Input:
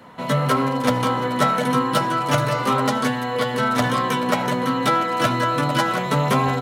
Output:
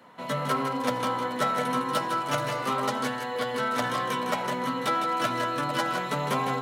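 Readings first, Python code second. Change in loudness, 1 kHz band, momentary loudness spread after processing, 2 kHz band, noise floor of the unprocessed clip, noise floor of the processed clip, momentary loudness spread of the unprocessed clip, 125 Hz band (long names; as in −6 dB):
−7.5 dB, −6.5 dB, 3 LU, −6.5 dB, −26 dBFS, −33 dBFS, 3 LU, −13.0 dB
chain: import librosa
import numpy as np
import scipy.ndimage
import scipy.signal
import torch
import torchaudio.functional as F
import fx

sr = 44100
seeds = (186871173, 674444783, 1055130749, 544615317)

y = fx.highpass(x, sr, hz=260.0, slope=6)
y = y + 10.0 ** (-8.0 / 20.0) * np.pad(y, (int(158 * sr / 1000.0), 0))[:len(y)]
y = F.gain(torch.from_numpy(y), -7.0).numpy()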